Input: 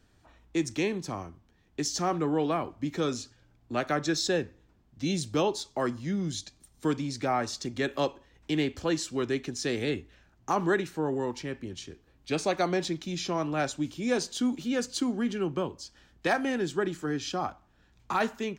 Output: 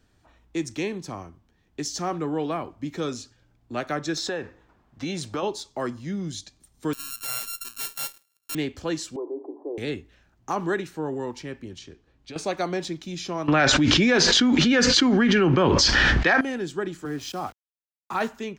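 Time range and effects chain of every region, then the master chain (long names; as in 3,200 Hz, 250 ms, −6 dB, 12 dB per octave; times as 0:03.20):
0:04.17–0:05.43: parametric band 1,100 Hz +13 dB 2.5 octaves + downward compressor 5 to 1, threshold −26 dBFS
0:06.93–0:08.55: samples sorted by size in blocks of 32 samples + first difference + leveller curve on the samples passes 2
0:09.16–0:09.78: Chebyshev band-pass filter 290–1,000 Hz, order 5 + spectral tilt +1.5 dB per octave + envelope flattener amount 50%
0:11.78–0:12.36: low-pass filter 6,700 Hz + downward compressor, threshold −36 dBFS
0:13.48–0:16.41: low-pass filter 5,800 Hz 24 dB per octave + parametric band 1,800 Hz +9 dB 1.1 octaves + envelope flattener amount 100%
0:17.05–0:18.28: centre clipping without the shift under −42 dBFS + multiband upward and downward expander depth 40%
whole clip: no processing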